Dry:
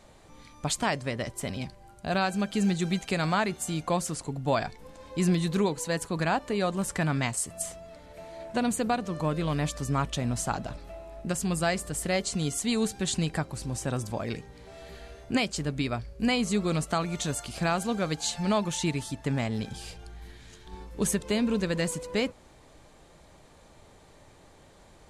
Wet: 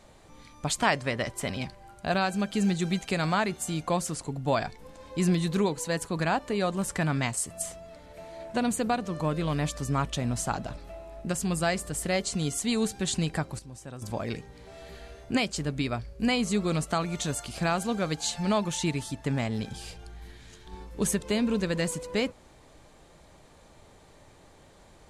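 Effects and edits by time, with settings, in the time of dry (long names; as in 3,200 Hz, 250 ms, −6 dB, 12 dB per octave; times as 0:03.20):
0:00.79–0:02.12: parametric band 1,600 Hz +5 dB 3 octaves
0:13.59–0:14.02: clip gain −11.5 dB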